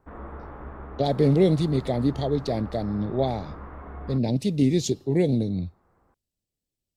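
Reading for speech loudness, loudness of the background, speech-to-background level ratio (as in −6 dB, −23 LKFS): −24.5 LKFS, −41.0 LKFS, 16.5 dB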